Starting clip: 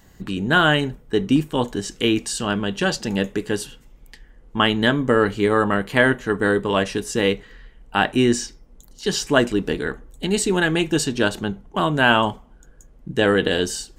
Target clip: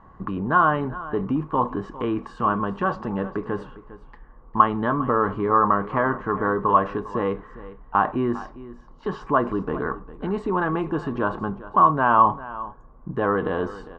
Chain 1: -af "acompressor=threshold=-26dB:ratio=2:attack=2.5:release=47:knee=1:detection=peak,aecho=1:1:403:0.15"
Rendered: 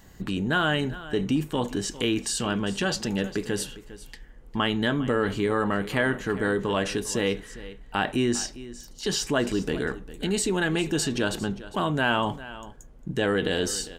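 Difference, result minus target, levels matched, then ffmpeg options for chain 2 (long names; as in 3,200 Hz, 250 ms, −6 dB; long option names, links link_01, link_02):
1,000 Hz band −8.5 dB
-af "acompressor=threshold=-26dB:ratio=2:attack=2.5:release=47:knee=1:detection=peak,lowpass=frequency=1100:width_type=q:width=7.6,aecho=1:1:403:0.15"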